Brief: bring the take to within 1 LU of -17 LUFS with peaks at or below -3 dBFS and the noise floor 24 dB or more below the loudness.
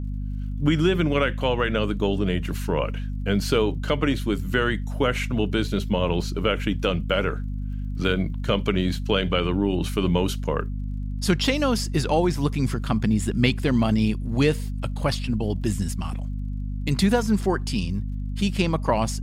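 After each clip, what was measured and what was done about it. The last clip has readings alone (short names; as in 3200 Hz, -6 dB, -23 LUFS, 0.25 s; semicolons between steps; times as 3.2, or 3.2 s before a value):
ticks 36/s; hum 50 Hz; harmonics up to 250 Hz; hum level -26 dBFS; loudness -24.5 LUFS; peak -7.0 dBFS; loudness target -17.0 LUFS
-> de-click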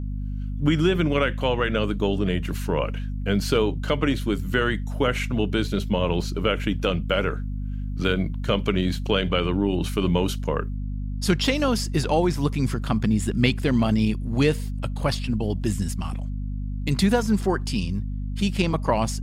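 ticks 0.052/s; hum 50 Hz; harmonics up to 250 Hz; hum level -26 dBFS
-> notches 50/100/150/200/250 Hz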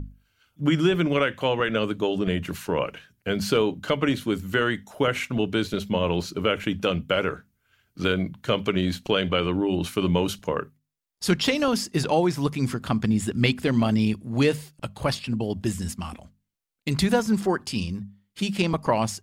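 hum none; loudness -25.0 LUFS; peak -8.0 dBFS; loudness target -17.0 LUFS
-> gain +8 dB; limiter -3 dBFS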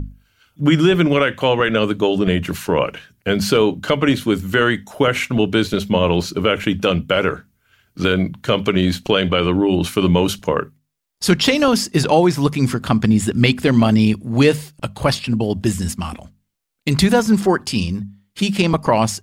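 loudness -17.5 LUFS; peak -3.0 dBFS; noise floor -66 dBFS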